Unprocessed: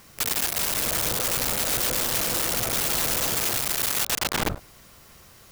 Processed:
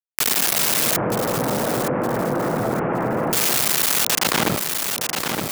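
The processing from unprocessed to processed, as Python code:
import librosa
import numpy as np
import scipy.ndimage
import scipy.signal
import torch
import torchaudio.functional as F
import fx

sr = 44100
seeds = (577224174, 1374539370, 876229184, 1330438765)

y = scipy.signal.sosfilt(scipy.signal.butter(4, 140.0, 'highpass', fs=sr, output='sos'), x)
y = fx.low_shelf(y, sr, hz=180.0, db=4.5)
y = fx.quant_dither(y, sr, seeds[0], bits=6, dither='none')
y = fx.gaussian_blur(y, sr, sigma=6.4, at=(0.96, 3.33))
y = fx.echo_feedback(y, sr, ms=916, feedback_pct=32, wet_db=-16.0)
y = fx.env_flatten(y, sr, amount_pct=70)
y = F.gain(torch.from_numpy(y), 4.0).numpy()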